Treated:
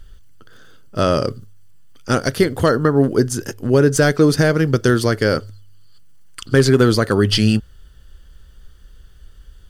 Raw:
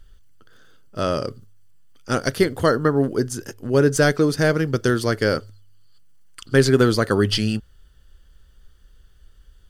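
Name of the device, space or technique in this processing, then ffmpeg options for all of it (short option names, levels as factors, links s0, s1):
clipper into limiter: -af "asoftclip=type=hard:threshold=0.531,alimiter=limit=0.299:level=0:latency=1:release=276,equalizer=f=92:t=o:w=2.9:g=2,volume=2.11"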